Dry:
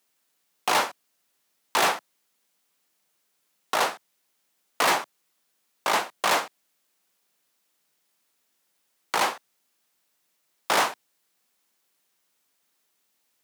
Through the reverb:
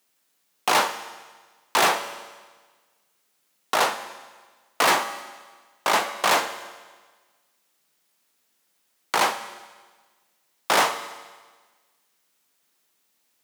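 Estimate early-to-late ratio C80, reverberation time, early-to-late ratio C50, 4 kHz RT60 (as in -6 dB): 12.5 dB, 1.4 s, 11.5 dB, 1.4 s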